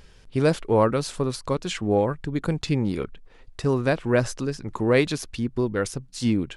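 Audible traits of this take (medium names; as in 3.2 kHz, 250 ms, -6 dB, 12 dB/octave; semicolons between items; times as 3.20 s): noise floor -51 dBFS; spectral tilt -6.0 dB/octave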